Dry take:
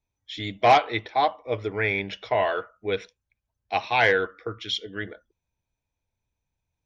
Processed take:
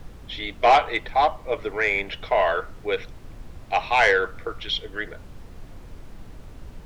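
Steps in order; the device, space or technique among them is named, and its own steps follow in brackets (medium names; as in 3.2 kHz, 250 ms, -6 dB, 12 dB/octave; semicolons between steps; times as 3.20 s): aircraft cabin announcement (band-pass 450–3600 Hz; saturation -13 dBFS, distortion -16 dB; brown noise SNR 13 dB); trim +4.5 dB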